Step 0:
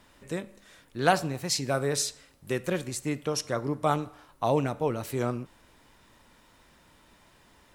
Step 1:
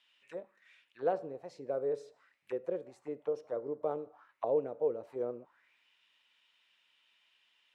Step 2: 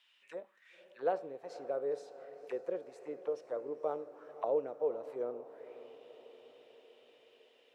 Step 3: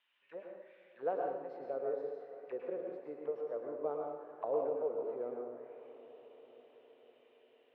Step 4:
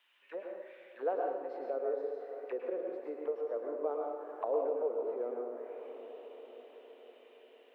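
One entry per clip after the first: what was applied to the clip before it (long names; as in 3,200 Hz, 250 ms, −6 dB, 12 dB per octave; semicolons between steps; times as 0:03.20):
envelope filter 480–3,100 Hz, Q 4.3, down, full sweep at −27 dBFS
high-pass filter 440 Hz 6 dB per octave; feedback delay with all-pass diffusion 507 ms, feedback 60%, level −15 dB; level +1 dB
high-frequency loss of the air 450 metres; dense smooth reverb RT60 0.83 s, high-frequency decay 0.9×, pre-delay 95 ms, DRR 0.5 dB; level −2 dB
high-pass filter 260 Hz 24 dB per octave; in parallel at +2.5 dB: downward compressor, threshold −47 dBFS, peak gain reduction 16.5 dB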